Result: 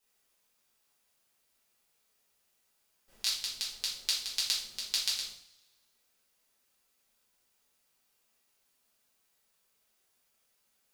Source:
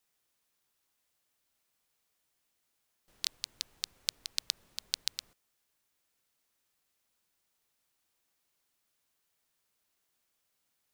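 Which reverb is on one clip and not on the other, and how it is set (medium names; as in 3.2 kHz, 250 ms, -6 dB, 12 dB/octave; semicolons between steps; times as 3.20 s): two-slope reverb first 0.48 s, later 1.5 s, from -22 dB, DRR -7.5 dB; trim -3.5 dB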